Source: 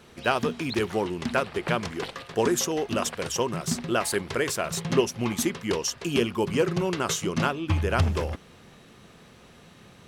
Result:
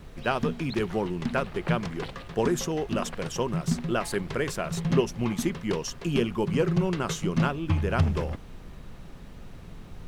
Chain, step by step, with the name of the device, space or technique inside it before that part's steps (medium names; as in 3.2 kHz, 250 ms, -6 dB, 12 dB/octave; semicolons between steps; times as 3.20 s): car interior (peaking EQ 160 Hz +7.5 dB 0.85 oct; treble shelf 4.4 kHz -7 dB; brown noise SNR 14 dB); trim -2.5 dB